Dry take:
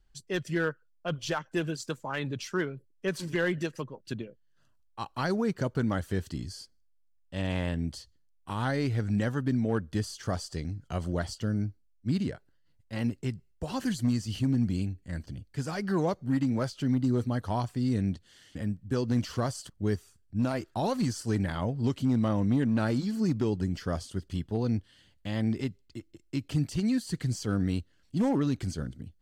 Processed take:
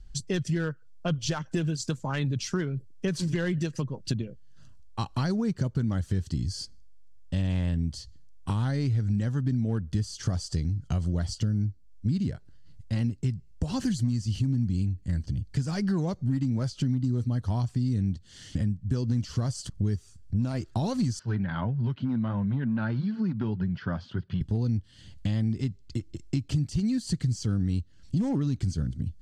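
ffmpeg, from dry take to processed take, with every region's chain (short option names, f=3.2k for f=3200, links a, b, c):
-filter_complex "[0:a]asettb=1/sr,asplit=3[a][b][c];[a]atrim=end=21.194[d];[b]atrim=start=21.19:end=24.41,asetpts=PTS-STARTPTS,afade=t=in:d=0.004:c=qsin,afade=t=out:st=3.216:d=0.004:c=qsin,flanger=delay=1.7:depth=2.1:regen=-54:speed=1.6:shape=sinusoidal,highpass=f=120:w=0.5412,highpass=f=120:w=1.3066,equalizer=f=300:t=q:w=4:g=-8,equalizer=f=470:t=q:w=4:g=-4,equalizer=f=940:t=q:w=4:g=6,equalizer=f=1.5k:t=q:w=4:g=9,lowpass=f=3.4k:w=0.5412,lowpass=f=3.4k:w=1.3066[e];[c]atrim=start=24.406[f];[d][e]acrossfade=d=0.004:c1=hsin:c2=qsin[g];[g][f]acrossfade=d=0.004:c1=qsin:c2=hsin,lowpass=6.7k,bass=f=250:g=14,treble=f=4k:g=11,acompressor=threshold=-33dB:ratio=4,volume=6dB"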